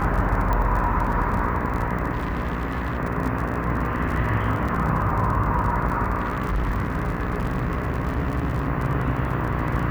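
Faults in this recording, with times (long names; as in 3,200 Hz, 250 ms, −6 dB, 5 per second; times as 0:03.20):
mains buzz 60 Hz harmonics 27 −28 dBFS
surface crackle 42 per second −28 dBFS
0:00.53: click −13 dBFS
0:02.11–0:02.98: clipping −21.5 dBFS
0:04.68–0:04.69: drop-out 5.2 ms
0:06.20–0:08.68: clipping −19.5 dBFS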